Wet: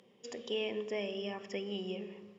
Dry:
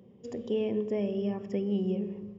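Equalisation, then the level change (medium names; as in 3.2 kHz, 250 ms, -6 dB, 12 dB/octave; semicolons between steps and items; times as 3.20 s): band-pass filter 2.9 kHz, Q 0.62; treble shelf 4.2 kHz +7 dB; +6.5 dB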